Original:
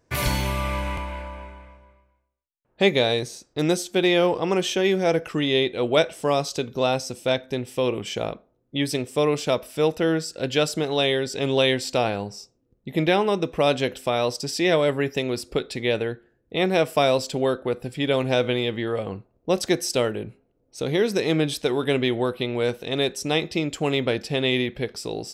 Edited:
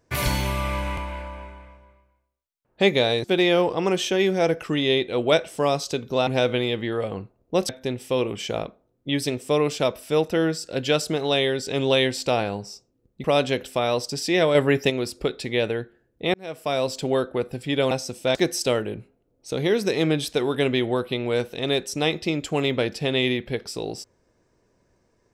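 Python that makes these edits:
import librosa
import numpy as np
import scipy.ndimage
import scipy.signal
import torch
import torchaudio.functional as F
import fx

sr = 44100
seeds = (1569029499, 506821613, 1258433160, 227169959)

y = fx.edit(x, sr, fx.cut(start_s=3.24, length_s=0.65),
    fx.swap(start_s=6.92, length_s=0.44, other_s=18.22, other_length_s=1.42),
    fx.cut(start_s=12.91, length_s=0.64),
    fx.clip_gain(start_s=14.86, length_s=0.35, db=4.5),
    fx.fade_in_span(start_s=16.65, length_s=0.71), tone=tone)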